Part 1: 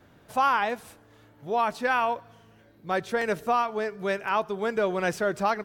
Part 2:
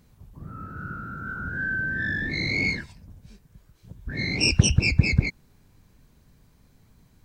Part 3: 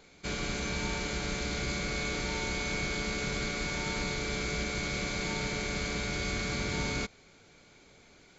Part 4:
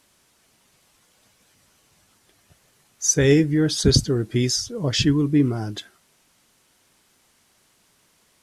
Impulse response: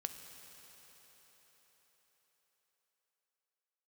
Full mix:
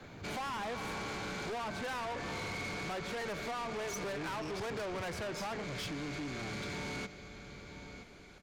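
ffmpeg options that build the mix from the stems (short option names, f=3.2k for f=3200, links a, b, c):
-filter_complex "[0:a]volume=2.5dB,asplit=2[a][b];[b]volume=-5dB[c];[1:a]equalizer=f=91:t=o:w=0.77:g=12,volume=-8dB[d];[2:a]volume=3dB,asplit=2[e][f];[f]volume=-19dB[g];[3:a]adelay=850,volume=-5.5dB[h];[d][e][h]amix=inputs=3:normalize=0,acompressor=threshold=-31dB:ratio=2,volume=0dB[i];[4:a]atrim=start_sample=2205[j];[c][j]afir=irnorm=-1:irlink=0[k];[g]aecho=0:1:972|1944|2916|3888:1|0.25|0.0625|0.0156[l];[a][i][k][l]amix=inputs=4:normalize=0,highshelf=f=5.1k:g=-11,acrossover=split=100|460[m][n][o];[m]acompressor=threshold=-53dB:ratio=4[p];[n]acompressor=threshold=-35dB:ratio=4[q];[o]acompressor=threshold=-28dB:ratio=4[r];[p][q][r]amix=inputs=3:normalize=0,asoftclip=type=tanh:threshold=-36.5dB"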